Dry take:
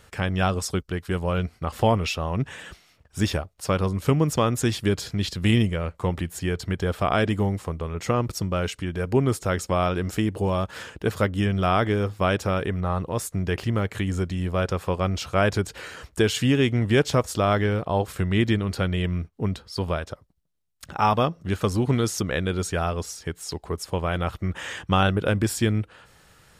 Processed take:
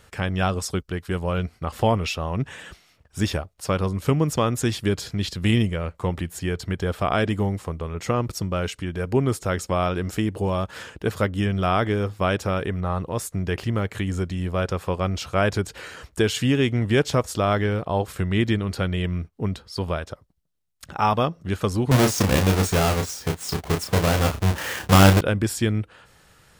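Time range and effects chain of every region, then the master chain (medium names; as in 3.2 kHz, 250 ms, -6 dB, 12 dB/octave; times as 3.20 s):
21.91–25.21 s: square wave that keeps the level + high-pass 48 Hz + doubling 31 ms -5.5 dB
whole clip: none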